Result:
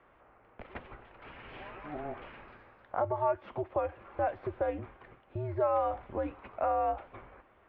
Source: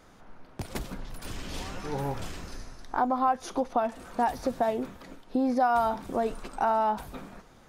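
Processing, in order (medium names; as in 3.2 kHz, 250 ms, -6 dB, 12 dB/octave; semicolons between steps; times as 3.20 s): mistuned SSB -150 Hz 210–2800 Hz; peaking EQ 150 Hz -10 dB 1.8 oct; trim -3 dB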